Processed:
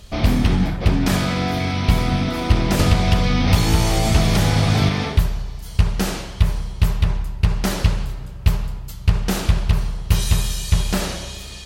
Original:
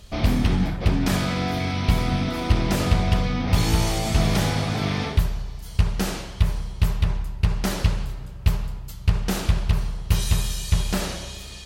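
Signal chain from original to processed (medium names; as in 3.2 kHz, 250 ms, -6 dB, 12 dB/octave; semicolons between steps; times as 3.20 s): 2.79–4.89 s: three bands compressed up and down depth 100%; trim +3.5 dB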